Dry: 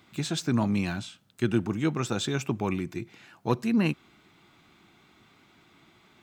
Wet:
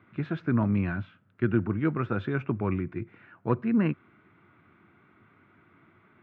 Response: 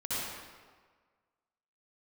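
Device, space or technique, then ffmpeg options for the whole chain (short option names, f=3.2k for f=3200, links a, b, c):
bass cabinet: -af "highpass=88,equalizer=f=96:t=q:w=4:g=9,equalizer=f=800:t=q:w=4:g=-7,equalizer=f=1.4k:t=q:w=4:g=4,lowpass=f=2.1k:w=0.5412,lowpass=f=2.1k:w=1.3066"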